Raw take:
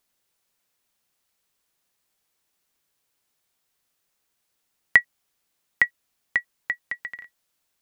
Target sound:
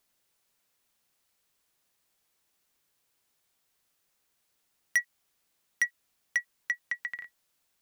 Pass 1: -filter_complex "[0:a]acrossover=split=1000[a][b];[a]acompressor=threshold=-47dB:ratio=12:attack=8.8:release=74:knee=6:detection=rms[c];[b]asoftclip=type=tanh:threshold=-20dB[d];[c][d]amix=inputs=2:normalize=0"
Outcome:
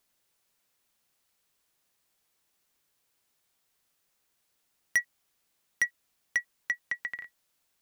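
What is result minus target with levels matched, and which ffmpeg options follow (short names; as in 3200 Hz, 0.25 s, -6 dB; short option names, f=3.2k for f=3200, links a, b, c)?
compressor: peak gain reduction -10 dB
-filter_complex "[0:a]acrossover=split=1000[a][b];[a]acompressor=threshold=-58dB:ratio=12:attack=8.8:release=74:knee=6:detection=rms[c];[b]asoftclip=type=tanh:threshold=-20dB[d];[c][d]amix=inputs=2:normalize=0"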